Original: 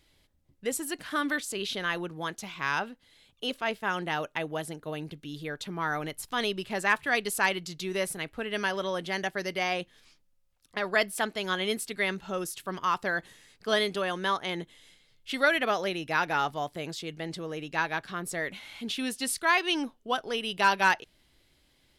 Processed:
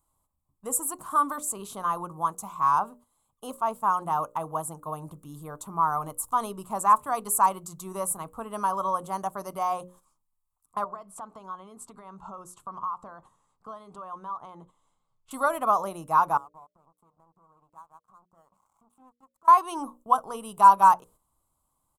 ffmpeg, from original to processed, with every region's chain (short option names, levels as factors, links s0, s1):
-filter_complex "[0:a]asettb=1/sr,asplit=3[s0][s1][s2];[s0]atrim=end=10.844[s3];[s1]atrim=start=10.84:end=15.31,asetpts=PTS-STARTPTS,afade=t=in:d=0.004:c=qsin,afade=t=out:st=4.466:d=0.004:c=qsin,lowpass=4300,acompressor=threshold=0.0112:ratio=8:attack=3.2:release=140:knee=1:detection=peak[s4];[s2]atrim=start=15.306[s5];[s3][s4]acrossfade=d=0.004:c1=hsin:c2=qsin[s6];[s6][s5]acrossfade=d=0.004:c1=qsin:c2=hsin,asettb=1/sr,asplit=3[s7][s8][s9];[s7]atrim=end=16.374[s10];[s8]atrim=start=16.37:end=19.48,asetpts=PTS-STARTPTS,afade=t=in:d=0.004:c=qsin,afade=t=out:st=3.106:d=0.004:c=qsin,lowpass=1500,acompressor=threshold=0.00447:ratio=5:attack=3.2:release=140:knee=1:detection=peak,aeval=exprs='sgn(val(0))*max(abs(val(0))-0.00251,0)':c=same[s11];[s9]atrim=start=19.476[s12];[s10][s11]acrossfade=d=0.004:c1=hsin:c2=qsin[s13];[s13][s12]acrossfade=d=0.004:c1=qsin:c2=hsin,bandreject=f=60:t=h:w=6,bandreject=f=120:t=h:w=6,bandreject=f=180:t=h:w=6,bandreject=f=240:t=h:w=6,bandreject=f=300:t=h:w=6,bandreject=f=360:t=h:w=6,bandreject=f=420:t=h:w=6,bandreject=f=480:t=h:w=6,bandreject=f=540:t=h:w=6,bandreject=f=600:t=h:w=6,agate=range=0.355:threshold=0.00282:ratio=16:detection=peak,firequalizer=gain_entry='entry(160,0);entry(380,-7);entry(1100,15);entry(1700,-20);entry(5000,-14);entry(7600,8)':delay=0.05:min_phase=1"